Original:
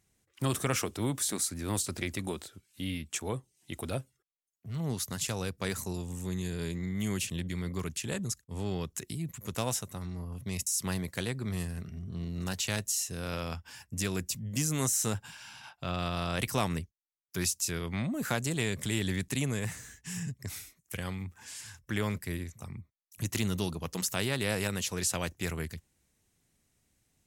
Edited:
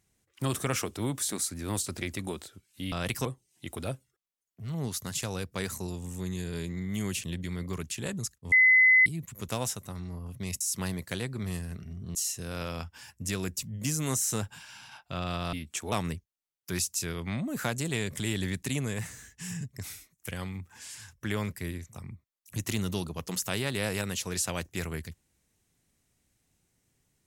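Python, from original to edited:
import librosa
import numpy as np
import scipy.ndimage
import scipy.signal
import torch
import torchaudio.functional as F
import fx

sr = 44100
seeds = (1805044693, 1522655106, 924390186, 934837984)

y = fx.edit(x, sr, fx.swap(start_s=2.92, length_s=0.39, other_s=16.25, other_length_s=0.33),
    fx.bleep(start_s=8.58, length_s=0.54, hz=2030.0, db=-16.0),
    fx.cut(start_s=12.21, length_s=0.66), tone=tone)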